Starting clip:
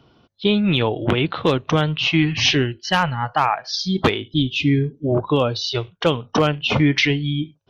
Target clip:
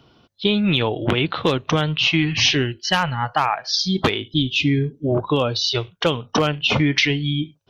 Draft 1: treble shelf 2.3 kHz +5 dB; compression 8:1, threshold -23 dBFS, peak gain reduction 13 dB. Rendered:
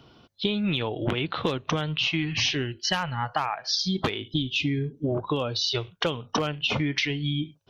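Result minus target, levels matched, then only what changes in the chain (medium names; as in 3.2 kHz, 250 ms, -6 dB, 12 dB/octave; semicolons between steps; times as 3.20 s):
compression: peak gain reduction +9 dB
change: compression 8:1, threshold -13 dBFS, peak gain reduction 4.5 dB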